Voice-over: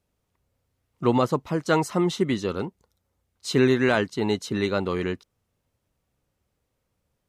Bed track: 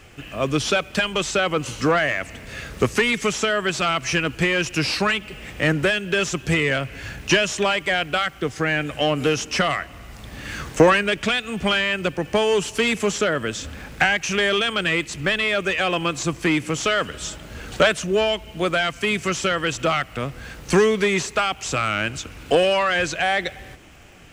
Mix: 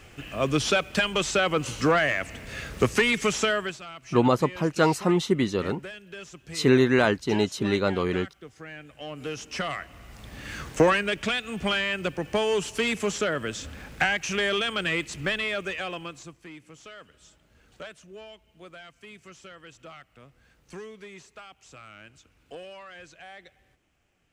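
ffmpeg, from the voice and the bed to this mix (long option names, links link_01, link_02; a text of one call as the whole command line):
ffmpeg -i stem1.wav -i stem2.wav -filter_complex "[0:a]adelay=3100,volume=0.5dB[link_01];[1:a]volume=12dB,afade=type=out:start_time=3.49:duration=0.3:silence=0.133352,afade=type=in:start_time=8.97:duration=1.29:silence=0.188365,afade=type=out:start_time=15.23:duration=1.14:silence=0.112202[link_02];[link_01][link_02]amix=inputs=2:normalize=0" out.wav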